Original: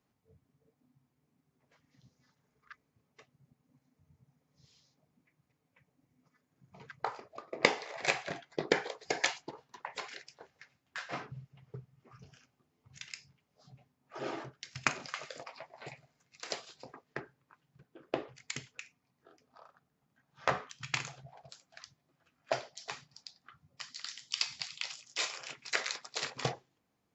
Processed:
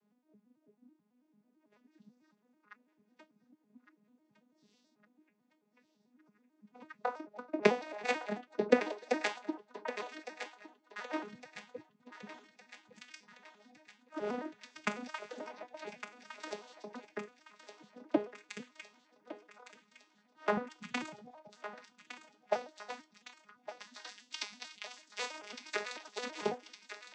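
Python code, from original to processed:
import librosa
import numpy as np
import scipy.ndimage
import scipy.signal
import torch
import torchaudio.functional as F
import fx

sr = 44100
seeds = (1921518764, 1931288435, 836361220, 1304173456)

y = fx.vocoder_arp(x, sr, chord='minor triad', root=56, every_ms=110)
y = fx.low_shelf(y, sr, hz=390.0, db=8.5, at=(20.57, 21.31))
y = fx.echo_thinned(y, sr, ms=1160, feedback_pct=63, hz=860.0, wet_db=-9.5)
y = fx.band_squash(y, sr, depth_pct=70, at=(15.74, 17.05))
y = F.gain(torch.from_numpy(y), 1.0).numpy()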